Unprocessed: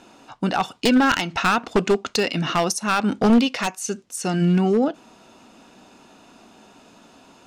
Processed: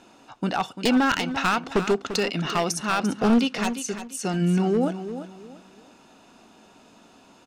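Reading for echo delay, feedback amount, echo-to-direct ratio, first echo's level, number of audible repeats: 344 ms, 28%, −10.5 dB, −11.0 dB, 3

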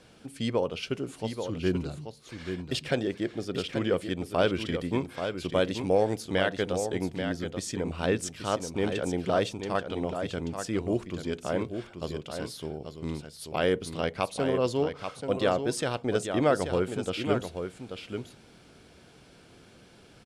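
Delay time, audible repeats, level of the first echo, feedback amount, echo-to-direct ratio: 834 ms, 1, −7.5 dB, repeats not evenly spaced, −7.5 dB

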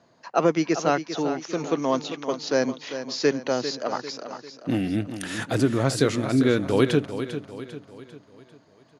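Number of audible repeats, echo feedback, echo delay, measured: 4, 46%, 397 ms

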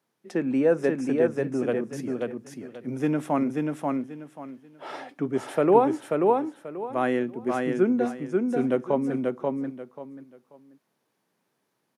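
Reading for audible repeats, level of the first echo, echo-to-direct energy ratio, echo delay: 3, −3.0 dB, −2.5 dB, 536 ms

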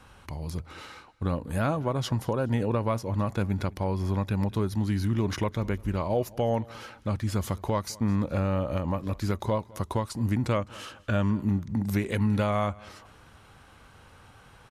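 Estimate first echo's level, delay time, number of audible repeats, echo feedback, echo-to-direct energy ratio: −23.0 dB, 208 ms, 2, 35%, −22.5 dB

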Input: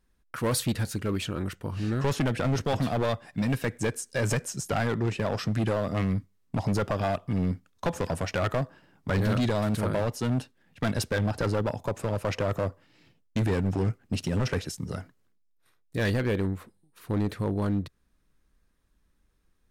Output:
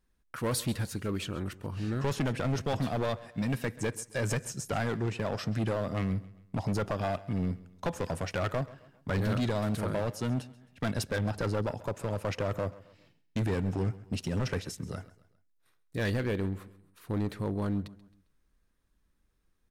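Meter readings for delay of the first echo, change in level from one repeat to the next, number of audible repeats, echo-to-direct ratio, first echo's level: 134 ms, −7.5 dB, 3, −18.0 dB, −19.0 dB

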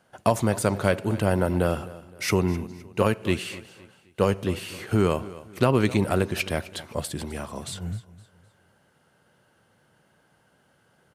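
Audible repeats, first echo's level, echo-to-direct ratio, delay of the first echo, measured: 2, −18.0 dB, −17.5 dB, 258 ms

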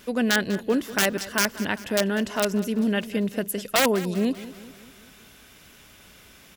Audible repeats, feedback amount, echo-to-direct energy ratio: 4, 53%, −15.0 dB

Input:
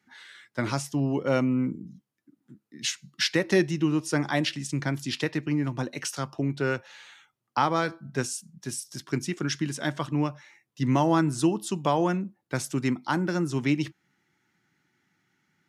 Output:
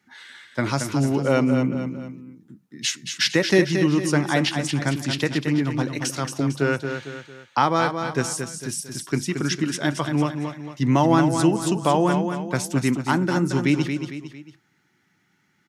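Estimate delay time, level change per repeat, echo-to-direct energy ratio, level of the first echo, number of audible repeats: 226 ms, −7.5 dB, −6.0 dB, −7.0 dB, 3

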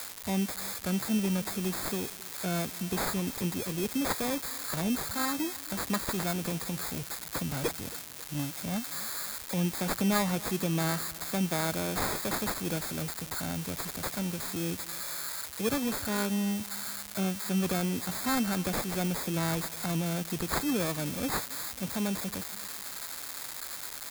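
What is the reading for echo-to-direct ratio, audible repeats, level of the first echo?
−20.0 dB, 2, −21.0 dB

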